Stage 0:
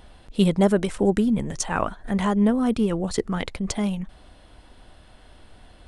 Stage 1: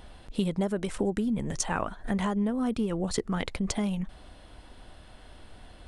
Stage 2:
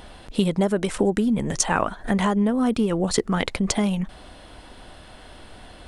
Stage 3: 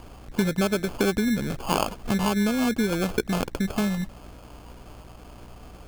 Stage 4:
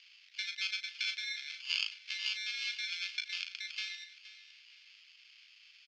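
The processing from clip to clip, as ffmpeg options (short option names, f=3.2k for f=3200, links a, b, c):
-af "acompressor=threshold=-25dB:ratio=6"
-af "lowshelf=f=130:g=-6.5,volume=8.5dB"
-filter_complex "[0:a]aeval=exprs='val(0)+0.00631*(sin(2*PI*60*n/s)+sin(2*PI*2*60*n/s)/2+sin(2*PI*3*60*n/s)/3+sin(2*PI*4*60*n/s)/4+sin(2*PI*5*60*n/s)/5)':c=same,acrossover=split=2800[a][b];[b]acompressor=threshold=-41dB:ratio=4:attack=1:release=60[c];[a][c]amix=inputs=2:normalize=0,acrusher=samples=23:mix=1:aa=0.000001,volume=-2.5dB"
-filter_complex "[0:a]asuperpass=centerf=3400:order=8:qfactor=1,asplit=2[a][b];[b]adelay=37,volume=-8.5dB[c];[a][c]amix=inputs=2:normalize=0,aecho=1:1:471|942|1413:0.168|0.0504|0.0151"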